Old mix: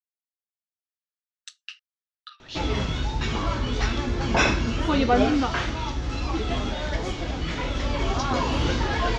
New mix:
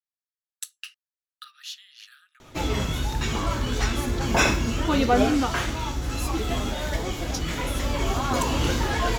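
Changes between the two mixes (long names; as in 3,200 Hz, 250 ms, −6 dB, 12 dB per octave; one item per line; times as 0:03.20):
speech: entry −0.85 s
master: remove low-pass filter 5,600 Hz 24 dB per octave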